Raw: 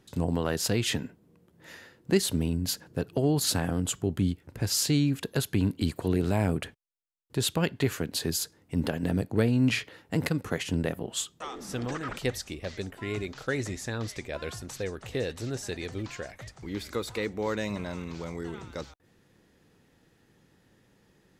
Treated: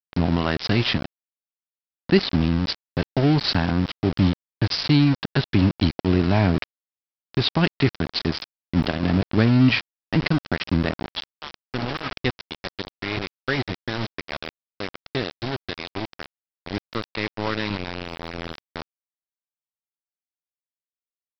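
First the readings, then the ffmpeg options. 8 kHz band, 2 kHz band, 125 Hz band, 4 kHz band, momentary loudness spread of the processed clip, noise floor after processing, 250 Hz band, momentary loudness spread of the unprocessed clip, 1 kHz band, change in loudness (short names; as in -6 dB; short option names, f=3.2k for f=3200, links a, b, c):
under -15 dB, +8.0 dB, +7.0 dB, +6.5 dB, 16 LU, under -85 dBFS, +7.0 dB, 12 LU, +8.5 dB, +6.5 dB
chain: -af "equalizer=f=480:w=4.2:g=-10.5,aresample=11025,aeval=exprs='val(0)*gte(abs(val(0)),0.0282)':c=same,aresample=44100,volume=8dB"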